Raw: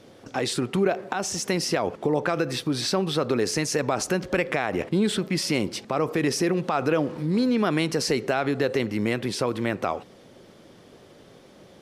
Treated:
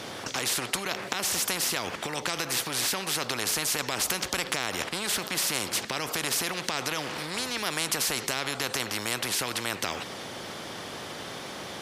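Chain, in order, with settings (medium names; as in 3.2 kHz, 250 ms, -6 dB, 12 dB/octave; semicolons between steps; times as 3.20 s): high-pass 240 Hz 6 dB/octave; spectrum-flattening compressor 4:1; trim +4.5 dB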